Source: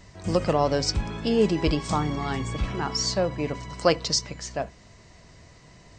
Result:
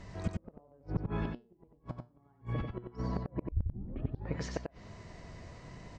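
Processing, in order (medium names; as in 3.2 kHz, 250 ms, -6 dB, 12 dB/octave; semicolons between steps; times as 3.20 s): low-pass that closes with the level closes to 830 Hz, closed at -22.5 dBFS; treble shelf 3 kHz -11 dB; compression 12:1, threshold -25 dBFS, peak gain reduction 10 dB; 3.43 s: tape start 0.93 s; inverted gate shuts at -22 dBFS, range -34 dB; 1.24–2.85 s: feedback comb 120 Hz, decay 0.27 s, harmonics all, mix 60%; delay 92 ms -4.5 dB; trim +1.5 dB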